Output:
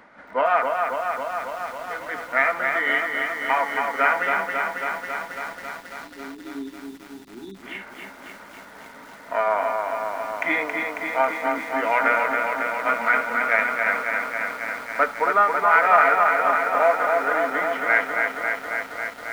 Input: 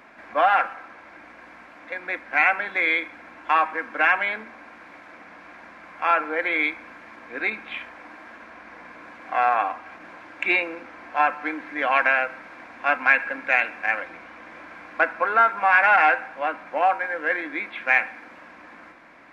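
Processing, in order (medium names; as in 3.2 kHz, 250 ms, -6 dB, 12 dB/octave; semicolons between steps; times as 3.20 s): rotating-head pitch shifter -2 st; spectral selection erased 5.65–7.62 s, 420–3400 Hz; bit-crushed delay 273 ms, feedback 80%, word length 8-bit, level -4 dB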